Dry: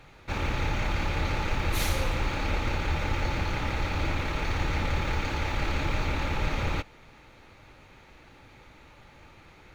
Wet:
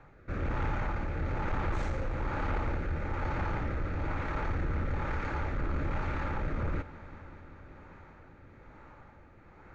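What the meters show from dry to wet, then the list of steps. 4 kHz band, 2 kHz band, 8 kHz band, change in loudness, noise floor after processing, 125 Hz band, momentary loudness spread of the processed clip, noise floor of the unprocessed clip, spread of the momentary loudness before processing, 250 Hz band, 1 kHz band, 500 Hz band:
−17.5 dB, −7.0 dB, below −15 dB, −4.5 dB, −55 dBFS, −3.5 dB, 18 LU, −54 dBFS, 2 LU, −3.0 dB, −4.0 dB, −3.5 dB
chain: Butterworth low-pass 8,000 Hz 48 dB per octave
high shelf with overshoot 2,200 Hz −12.5 dB, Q 1.5
rotating-speaker cabinet horn 1.1 Hz
soft clipping −25 dBFS, distortion −15 dB
echo machine with several playback heads 195 ms, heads all three, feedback 70%, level −23 dB

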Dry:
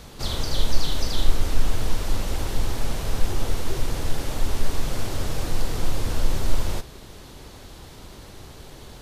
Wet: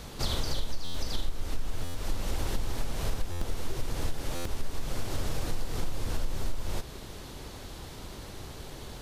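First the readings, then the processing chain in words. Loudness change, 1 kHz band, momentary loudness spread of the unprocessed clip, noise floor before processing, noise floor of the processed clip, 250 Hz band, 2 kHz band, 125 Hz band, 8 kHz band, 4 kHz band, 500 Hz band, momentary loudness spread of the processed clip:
−8.0 dB, −6.5 dB, 16 LU, −44 dBFS, −44 dBFS, −6.5 dB, −6.5 dB, −7.0 dB, −6.5 dB, −6.5 dB, −6.5 dB, 9 LU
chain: downward compressor 6 to 1, threshold −24 dBFS, peak gain reduction 16 dB
buffer that repeats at 0:00.84/0:01.84/0:03.31/0:04.35, samples 512, times 8

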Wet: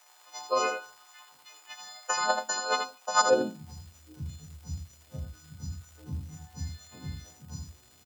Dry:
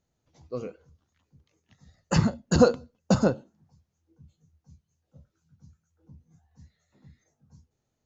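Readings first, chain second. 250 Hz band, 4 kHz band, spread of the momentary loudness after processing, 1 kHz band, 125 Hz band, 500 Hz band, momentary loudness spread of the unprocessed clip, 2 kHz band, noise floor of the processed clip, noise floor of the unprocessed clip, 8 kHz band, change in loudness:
−13.0 dB, +5.5 dB, 19 LU, +7.5 dB, −8.5 dB, −3.0 dB, 18 LU, +7.5 dB, −59 dBFS, −79 dBFS, can't be measured, −5.0 dB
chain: every partial snapped to a pitch grid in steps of 3 semitones
compressor whose output falls as the input rises −32 dBFS, ratio −1
surface crackle 340 per second −53 dBFS
on a send: single-tap delay 81 ms −6.5 dB
on the sum: high-pass filter sweep 860 Hz → 61 Hz, 0:03.21–0:03.75
level +6 dB

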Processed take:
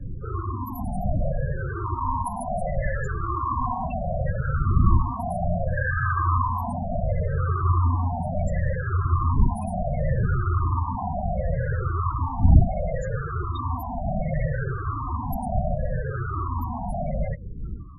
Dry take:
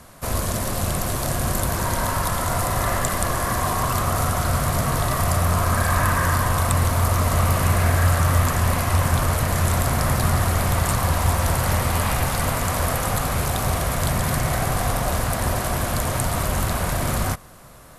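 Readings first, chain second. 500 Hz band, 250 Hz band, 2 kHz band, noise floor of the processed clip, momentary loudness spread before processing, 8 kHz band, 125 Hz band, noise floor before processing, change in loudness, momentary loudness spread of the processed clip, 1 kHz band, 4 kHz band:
−4.5 dB, −3.5 dB, −8.5 dB, −32 dBFS, 4 LU, below −25 dB, −3.0 dB, −27 dBFS, −4.5 dB, 8 LU, −4.5 dB, below −30 dB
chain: rippled gain that drifts along the octave scale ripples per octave 0.54, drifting −0.69 Hz, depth 24 dB
wind on the microphone 100 Hz −19 dBFS
spectral peaks only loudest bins 16
level −9 dB

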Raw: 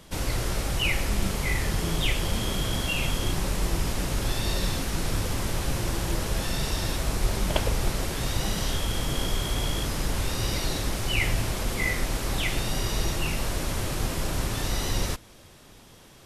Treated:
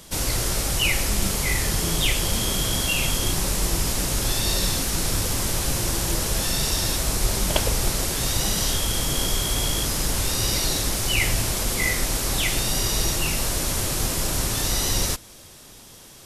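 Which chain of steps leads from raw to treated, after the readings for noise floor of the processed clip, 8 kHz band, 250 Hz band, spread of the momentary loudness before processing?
−46 dBFS, +11.0 dB, +2.0 dB, 3 LU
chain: bass and treble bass −1 dB, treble +9 dB
level +2.5 dB

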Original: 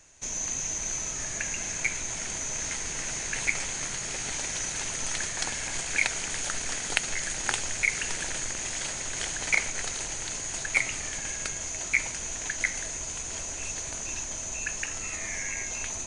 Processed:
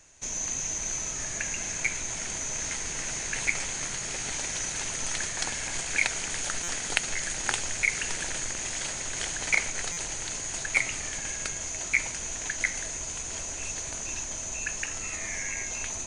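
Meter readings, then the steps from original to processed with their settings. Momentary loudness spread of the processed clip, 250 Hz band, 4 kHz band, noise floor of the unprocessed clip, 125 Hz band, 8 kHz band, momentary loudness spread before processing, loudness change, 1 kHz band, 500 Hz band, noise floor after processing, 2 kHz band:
6 LU, 0.0 dB, 0.0 dB, −36 dBFS, 0.0 dB, 0.0 dB, 6 LU, 0.0 dB, 0.0 dB, 0.0 dB, −36 dBFS, 0.0 dB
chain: buffer that repeats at 0:06.63/0:09.92, samples 256, times 8

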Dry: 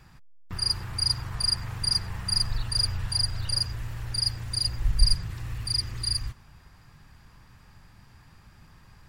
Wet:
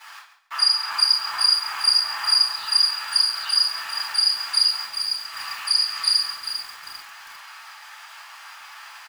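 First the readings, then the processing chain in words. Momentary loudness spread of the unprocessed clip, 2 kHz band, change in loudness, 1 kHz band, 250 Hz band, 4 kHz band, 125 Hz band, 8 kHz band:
6 LU, +12.5 dB, +7.5 dB, +13.5 dB, below −15 dB, +9.0 dB, below −35 dB, +3.5 dB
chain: downward compressor 16 to 1, threshold −29 dBFS, peak gain reduction 19 dB
bit reduction 9 bits
elliptic high-pass filter 830 Hz, stop band 80 dB
high-shelf EQ 6,700 Hz −9 dB
rectangular room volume 53 cubic metres, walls mixed, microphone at 2.6 metres
dynamic equaliser 2,000 Hz, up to −4 dB, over −52 dBFS, Q 6.6
repeating echo 138 ms, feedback 24%, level −12.5 dB
feedback echo at a low word length 398 ms, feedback 35%, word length 7 bits, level −9 dB
level +5 dB

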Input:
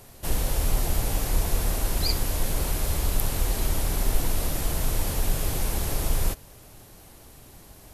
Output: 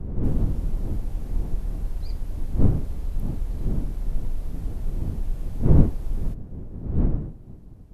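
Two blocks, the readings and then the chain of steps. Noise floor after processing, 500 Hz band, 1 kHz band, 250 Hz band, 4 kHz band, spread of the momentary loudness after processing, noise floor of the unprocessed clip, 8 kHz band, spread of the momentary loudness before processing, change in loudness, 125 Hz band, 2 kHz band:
−42 dBFS, −2.5 dB, −10.5 dB, +6.5 dB, below −20 dB, 12 LU, −49 dBFS, below −25 dB, 2 LU, −0.5 dB, +4.5 dB, below −15 dB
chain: wind on the microphone 230 Hz −19 dBFS
spectral tilt −3 dB per octave
level −17 dB

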